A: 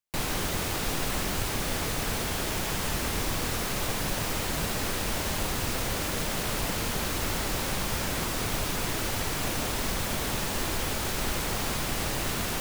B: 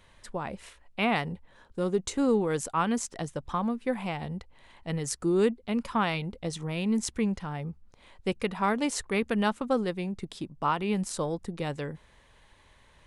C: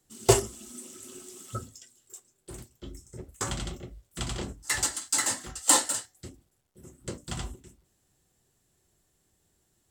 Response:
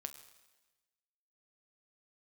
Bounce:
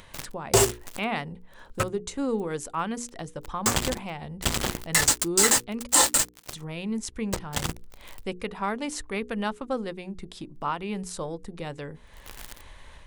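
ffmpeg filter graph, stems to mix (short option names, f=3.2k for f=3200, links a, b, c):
-filter_complex "[0:a]bandreject=f=4k:w=23,volume=0dB[a];[1:a]asubboost=boost=2:cutoff=75,acompressor=mode=upward:threshold=-31dB:ratio=2.5,volume=-6.5dB,asplit=3[b][c][d];[b]atrim=end=5.87,asetpts=PTS-STARTPTS,afade=t=out:st=5.866:d=0.004:c=hsin[e];[c]atrim=start=5.87:end=6.53,asetpts=PTS-STARTPTS,volume=0[f];[d]atrim=start=6.53,asetpts=PTS-STARTPTS,afade=t=in:d=0.004:c=hsin[g];[e][f][g]concat=n=3:v=0:a=1,asplit=2[h][i];[2:a]acontrast=28,adelay=250,volume=-1dB[j];[i]apad=whole_len=556092[k];[a][k]sidechaincompress=threshold=-47dB:ratio=20:attack=16:release=887[l];[l][j]amix=inputs=2:normalize=0,acrusher=bits=3:mix=0:aa=0.5,alimiter=limit=-12.5dB:level=0:latency=1:release=50,volume=0dB[m];[h][m]amix=inputs=2:normalize=0,bandreject=f=60:t=h:w=6,bandreject=f=120:t=h:w=6,bandreject=f=180:t=h:w=6,bandreject=f=240:t=h:w=6,bandreject=f=300:t=h:w=6,bandreject=f=360:t=h:w=6,bandreject=f=420:t=h:w=6,bandreject=f=480:t=h:w=6,dynaudnorm=f=120:g=3:m=4.5dB"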